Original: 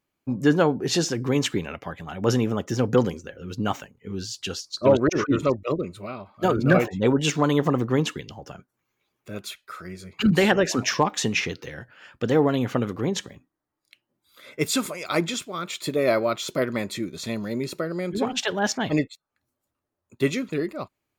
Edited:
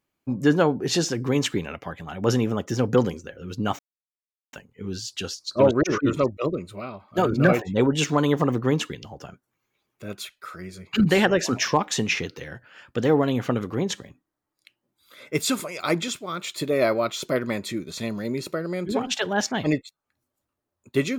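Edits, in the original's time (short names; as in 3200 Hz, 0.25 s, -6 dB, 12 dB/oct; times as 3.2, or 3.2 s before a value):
3.79 insert silence 0.74 s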